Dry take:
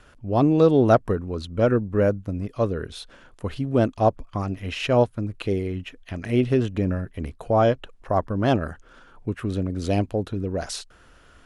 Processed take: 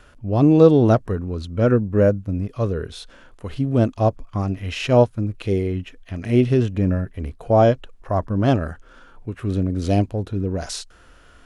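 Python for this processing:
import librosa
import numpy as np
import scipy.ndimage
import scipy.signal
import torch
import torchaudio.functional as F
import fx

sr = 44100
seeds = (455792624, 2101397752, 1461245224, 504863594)

y = fx.dynamic_eq(x, sr, hz=6300.0, q=0.91, threshold_db=-47.0, ratio=4.0, max_db=4)
y = fx.hpss(y, sr, part='harmonic', gain_db=9)
y = y * 10.0 ** (-3.5 / 20.0)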